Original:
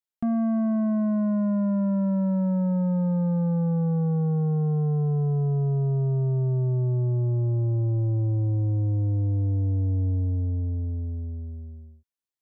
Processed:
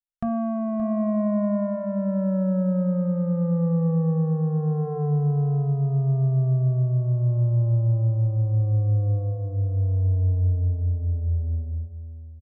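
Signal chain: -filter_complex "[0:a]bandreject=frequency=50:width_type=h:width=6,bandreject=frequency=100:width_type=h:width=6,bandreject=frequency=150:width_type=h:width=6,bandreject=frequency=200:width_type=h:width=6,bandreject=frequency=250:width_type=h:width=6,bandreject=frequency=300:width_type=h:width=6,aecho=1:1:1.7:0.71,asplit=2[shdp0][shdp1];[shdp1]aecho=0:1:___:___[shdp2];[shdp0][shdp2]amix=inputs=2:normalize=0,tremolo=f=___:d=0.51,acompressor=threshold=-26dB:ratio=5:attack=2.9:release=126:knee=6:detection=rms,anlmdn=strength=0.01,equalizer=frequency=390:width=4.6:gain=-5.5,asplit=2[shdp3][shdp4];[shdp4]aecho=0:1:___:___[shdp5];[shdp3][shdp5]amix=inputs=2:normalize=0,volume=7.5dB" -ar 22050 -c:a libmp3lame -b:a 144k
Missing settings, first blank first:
285, 0.0794, 0.78, 573, 0.282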